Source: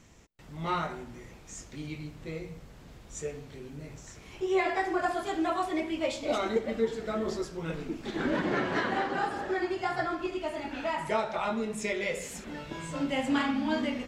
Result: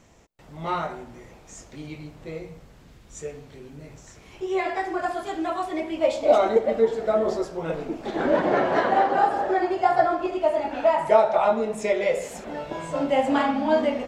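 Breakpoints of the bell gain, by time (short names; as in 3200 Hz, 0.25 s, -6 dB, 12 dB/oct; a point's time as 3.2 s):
bell 660 Hz 1.4 oct
2.44 s +7 dB
3.01 s -4 dB
3.24 s +3 dB
5.67 s +3 dB
6.23 s +14.5 dB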